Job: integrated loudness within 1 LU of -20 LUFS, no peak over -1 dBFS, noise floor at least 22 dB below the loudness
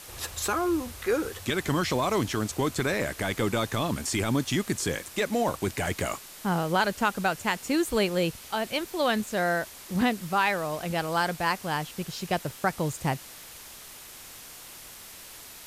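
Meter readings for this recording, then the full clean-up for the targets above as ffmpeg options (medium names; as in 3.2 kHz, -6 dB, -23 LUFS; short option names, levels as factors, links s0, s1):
noise floor -46 dBFS; noise floor target -50 dBFS; loudness -28.0 LUFS; peak level -12.0 dBFS; loudness target -20.0 LUFS
-> -af "afftdn=nr=6:nf=-46"
-af "volume=2.51"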